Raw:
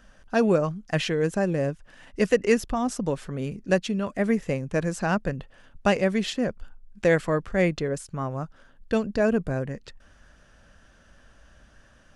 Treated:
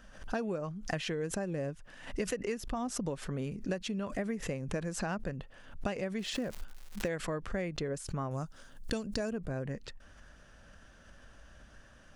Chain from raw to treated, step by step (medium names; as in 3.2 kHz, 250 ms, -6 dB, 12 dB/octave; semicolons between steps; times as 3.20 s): 8.31–9.31 s: tone controls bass +2 dB, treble +14 dB; compression 12:1, threshold -30 dBFS, peak gain reduction 16 dB; 6.18–7.07 s: crackle 310 per s -42 dBFS; swell ahead of each attack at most 110 dB/s; trim -1.5 dB